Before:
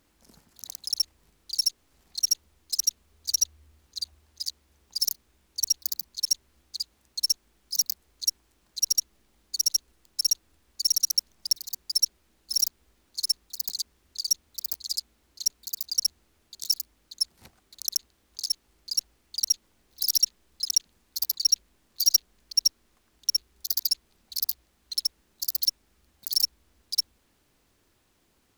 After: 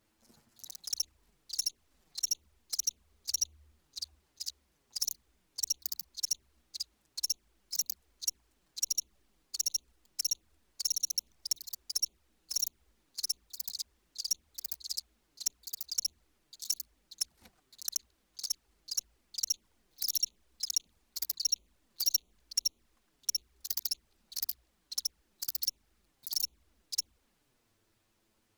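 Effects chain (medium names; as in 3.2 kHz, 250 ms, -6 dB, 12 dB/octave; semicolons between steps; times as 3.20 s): touch-sensitive flanger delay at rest 9.4 ms, full sweep at -22.5 dBFS; trim -3.5 dB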